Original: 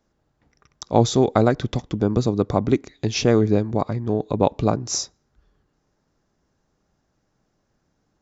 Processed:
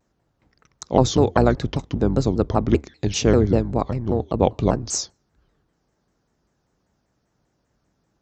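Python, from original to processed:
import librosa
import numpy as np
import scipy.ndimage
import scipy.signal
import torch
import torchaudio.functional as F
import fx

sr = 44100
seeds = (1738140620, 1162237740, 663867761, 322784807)

y = fx.octave_divider(x, sr, octaves=2, level_db=-3.0)
y = scipy.signal.sosfilt(scipy.signal.butter(2, 49.0, 'highpass', fs=sr, output='sos'), y)
y = fx.vibrato_shape(y, sr, shape='saw_down', rate_hz=5.1, depth_cents=250.0)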